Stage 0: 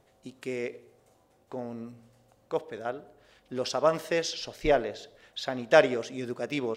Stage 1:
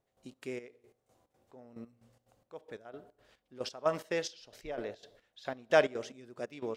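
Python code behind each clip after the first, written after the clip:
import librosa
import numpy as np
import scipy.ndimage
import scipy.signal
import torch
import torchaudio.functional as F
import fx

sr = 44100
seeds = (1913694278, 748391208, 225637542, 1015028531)

y = fx.step_gate(x, sr, bpm=179, pattern='..xx.xx...x', floor_db=-12.0, edge_ms=4.5)
y = F.gain(torch.from_numpy(y), -5.5).numpy()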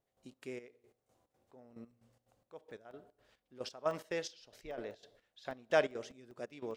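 y = fx.buffer_crackle(x, sr, first_s=0.91, period_s=0.2, block=64, kind='zero')
y = F.gain(torch.from_numpy(y), -4.5).numpy()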